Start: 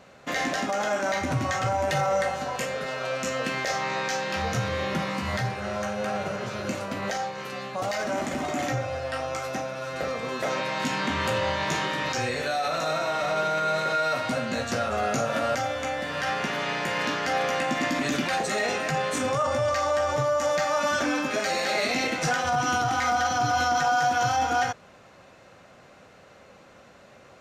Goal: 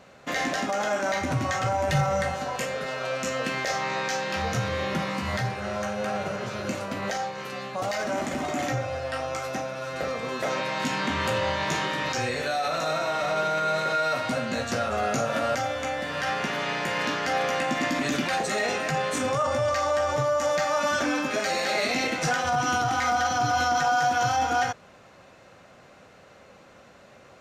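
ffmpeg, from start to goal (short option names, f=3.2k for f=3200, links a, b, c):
-filter_complex "[0:a]asplit=3[a][b][c];[a]afade=t=out:st=1.88:d=0.02[d];[b]asubboost=boost=5.5:cutoff=200,afade=t=in:st=1.88:d=0.02,afade=t=out:st=2.33:d=0.02[e];[c]afade=t=in:st=2.33:d=0.02[f];[d][e][f]amix=inputs=3:normalize=0"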